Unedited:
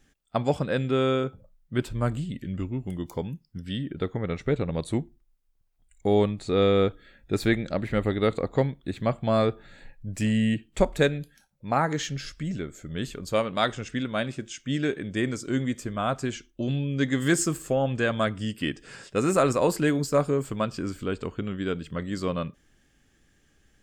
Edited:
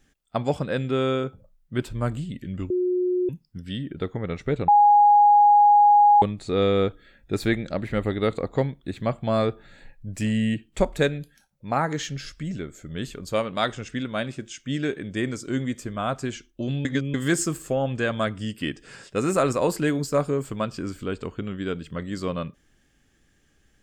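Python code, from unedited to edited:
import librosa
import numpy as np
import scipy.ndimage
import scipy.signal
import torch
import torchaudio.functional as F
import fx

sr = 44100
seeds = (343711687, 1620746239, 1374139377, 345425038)

y = fx.edit(x, sr, fx.bleep(start_s=2.7, length_s=0.59, hz=362.0, db=-20.0),
    fx.bleep(start_s=4.68, length_s=1.54, hz=826.0, db=-11.5),
    fx.reverse_span(start_s=16.85, length_s=0.29), tone=tone)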